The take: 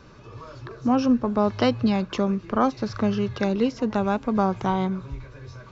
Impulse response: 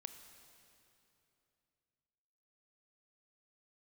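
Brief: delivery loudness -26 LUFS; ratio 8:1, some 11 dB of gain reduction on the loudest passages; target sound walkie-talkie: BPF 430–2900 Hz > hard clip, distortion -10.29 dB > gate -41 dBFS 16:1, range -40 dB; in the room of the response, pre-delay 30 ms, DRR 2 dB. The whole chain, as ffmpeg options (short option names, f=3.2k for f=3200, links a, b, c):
-filter_complex "[0:a]acompressor=threshold=-27dB:ratio=8,asplit=2[a][b];[1:a]atrim=start_sample=2205,adelay=30[c];[b][c]afir=irnorm=-1:irlink=0,volume=2.5dB[d];[a][d]amix=inputs=2:normalize=0,highpass=430,lowpass=2.9k,asoftclip=type=hard:threshold=-30.5dB,agate=range=-40dB:threshold=-41dB:ratio=16,volume=11.5dB"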